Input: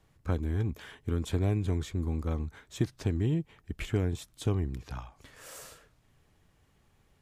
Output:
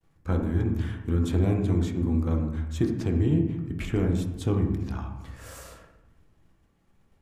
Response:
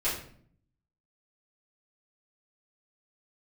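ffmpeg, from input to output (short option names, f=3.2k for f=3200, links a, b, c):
-filter_complex "[0:a]agate=range=-33dB:threshold=-60dB:ratio=3:detection=peak,asplit=2[a][b];[b]equalizer=f=250:t=o:w=1:g=5,equalizer=f=4k:t=o:w=1:g=-10,equalizer=f=8k:t=o:w=1:g=-12[c];[1:a]atrim=start_sample=2205,asetrate=23373,aresample=44100,lowpass=7.1k[d];[c][d]afir=irnorm=-1:irlink=0,volume=-12dB[e];[a][e]amix=inputs=2:normalize=0"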